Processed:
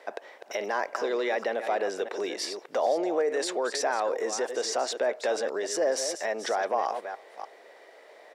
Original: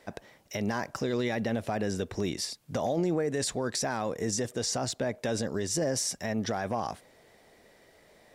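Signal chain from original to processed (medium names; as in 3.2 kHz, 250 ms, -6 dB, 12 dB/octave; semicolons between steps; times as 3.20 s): chunks repeated in reverse 298 ms, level -11 dB; low-pass 2 kHz 6 dB/octave; in parallel at +1 dB: peak limiter -29.5 dBFS, peak gain reduction 11.5 dB; on the sum: high-pass 420 Hz 24 dB/octave; speakerphone echo 330 ms, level -27 dB; trim +3 dB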